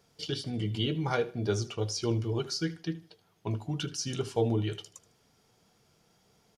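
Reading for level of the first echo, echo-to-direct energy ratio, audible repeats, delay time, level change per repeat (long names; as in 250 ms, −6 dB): −18.0 dB, −17.5 dB, 2, 77 ms, −10.5 dB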